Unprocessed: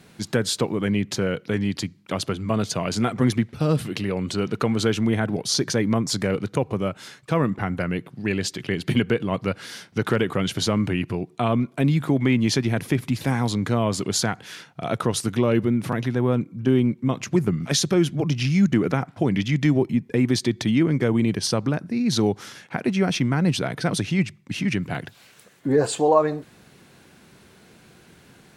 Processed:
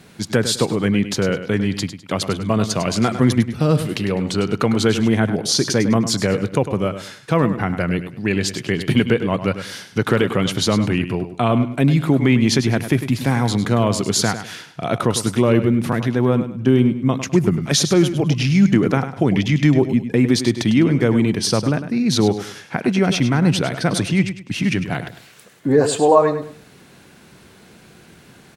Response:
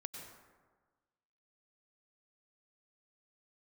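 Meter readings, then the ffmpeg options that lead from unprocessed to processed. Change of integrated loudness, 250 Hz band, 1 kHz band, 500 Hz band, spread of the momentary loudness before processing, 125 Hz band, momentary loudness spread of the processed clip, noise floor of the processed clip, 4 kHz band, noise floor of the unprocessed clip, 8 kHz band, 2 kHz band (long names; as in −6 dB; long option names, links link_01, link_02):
+5.0 dB, +5.0 dB, +5.0 dB, +5.0 dB, 7 LU, +5.0 dB, 8 LU, −47 dBFS, +5.0 dB, −53 dBFS, +5.0 dB, +5.0 dB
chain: -af "aecho=1:1:102|204|306:0.282|0.0789|0.0221,volume=4.5dB"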